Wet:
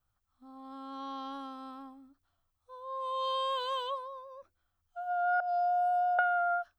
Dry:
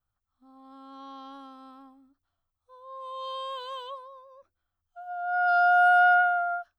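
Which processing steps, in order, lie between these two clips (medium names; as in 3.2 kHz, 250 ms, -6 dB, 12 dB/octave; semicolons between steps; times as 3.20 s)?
5.40–6.19 s: FFT filter 590 Hz 0 dB, 1.1 kHz -28 dB, 2.1 kHz -29 dB, 5 kHz -14 dB; compression 4:1, threshold -30 dBFS, peak gain reduction 9 dB; trim +3.5 dB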